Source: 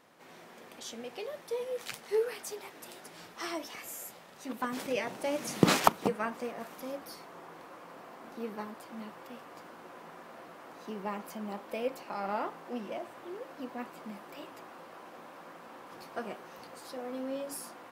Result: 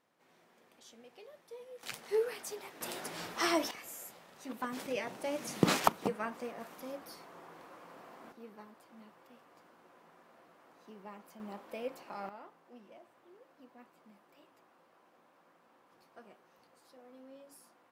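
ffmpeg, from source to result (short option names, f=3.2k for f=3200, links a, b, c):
-af "asetnsamples=n=441:p=0,asendcmd='1.83 volume volume -2dB;2.81 volume volume 7dB;3.71 volume volume -4dB;8.32 volume volume -12.5dB;11.4 volume volume -6dB;12.29 volume volume -17dB',volume=-14dB"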